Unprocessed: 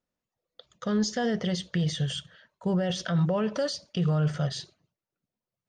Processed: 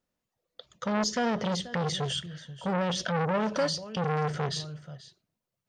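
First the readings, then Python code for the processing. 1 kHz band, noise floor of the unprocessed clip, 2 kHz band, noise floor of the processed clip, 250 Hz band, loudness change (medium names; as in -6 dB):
+6.5 dB, under -85 dBFS, +3.5 dB, under -85 dBFS, -3.5 dB, -1.0 dB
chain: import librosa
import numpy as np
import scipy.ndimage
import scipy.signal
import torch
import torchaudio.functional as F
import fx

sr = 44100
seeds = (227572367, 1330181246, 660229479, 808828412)

y = x + 10.0 ** (-18.0 / 20.0) * np.pad(x, (int(484 * sr / 1000.0), 0))[:len(x)]
y = fx.transformer_sat(y, sr, knee_hz=1000.0)
y = F.gain(torch.from_numpy(y), 3.0).numpy()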